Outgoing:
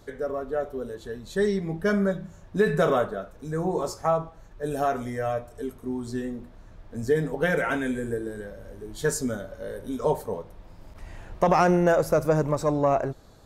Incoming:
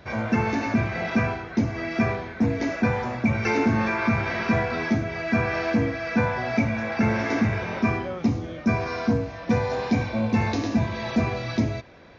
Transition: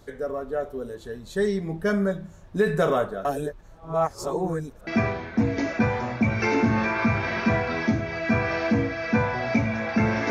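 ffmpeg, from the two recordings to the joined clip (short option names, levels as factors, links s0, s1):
-filter_complex "[0:a]apad=whole_dur=10.3,atrim=end=10.3,asplit=2[s0][s1];[s0]atrim=end=3.252[s2];[s1]atrim=start=3.248:end=4.872,asetpts=PTS-STARTPTS,areverse[s3];[1:a]atrim=start=1.898:end=7.33[s4];[s2][s3]acrossfade=d=0.004:c1=hsin:c2=hsin[s5];[s5][s4]acrossfade=d=0.004:c1=hsin:c2=hsin"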